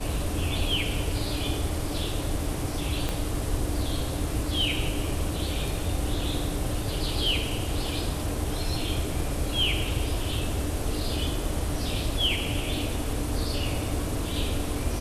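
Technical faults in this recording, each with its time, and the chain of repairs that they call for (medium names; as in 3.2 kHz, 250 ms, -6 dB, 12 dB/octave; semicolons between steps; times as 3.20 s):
3.09 s: pop -13 dBFS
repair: de-click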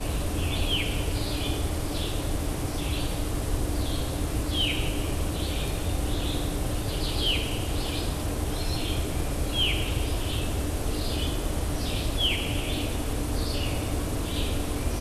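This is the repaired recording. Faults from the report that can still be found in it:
3.09 s: pop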